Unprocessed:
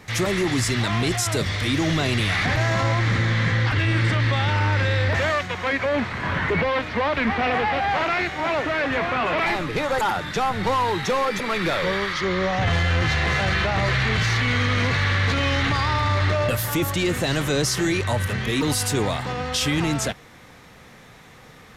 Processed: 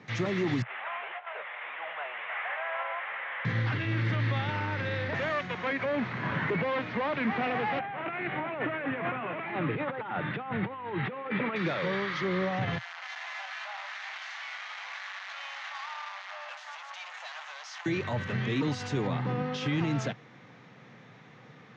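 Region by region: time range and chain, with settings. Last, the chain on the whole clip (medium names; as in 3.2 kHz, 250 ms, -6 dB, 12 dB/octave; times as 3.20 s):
0.62–3.45 s: CVSD coder 16 kbps + inverse Chebyshev high-pass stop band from 320 Hz
7.79–11.56 s: inverse Chebyshev low-pass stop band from 5.9 kHz + compressor with a negative ratio -26 dBFS, ratio -0.5
12.78–17.86 s: overload inside the chain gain 28.5 dB + steep high-pass 690 Hz 48 dB/octave
19.07–19.66 s: high-pass 160 Hz + tilt EQ -2.5 dB/octave + band-stop 650 Hz, Q 5.9
whole clip: peak limiter -15.5 dBFS; Chebyshev band-pass 120–6500 Hz, order 4; tone controls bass +4 dB, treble -11 dB; trim -5.5 dB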